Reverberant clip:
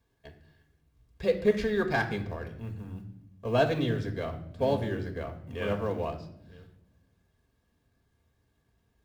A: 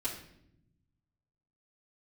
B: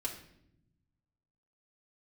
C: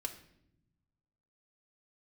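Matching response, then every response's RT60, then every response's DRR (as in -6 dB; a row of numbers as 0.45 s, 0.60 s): C; 0.75 s, 0.75 s, 0.80 s; -7.0 dB, -1.5 dB, 3.5 dB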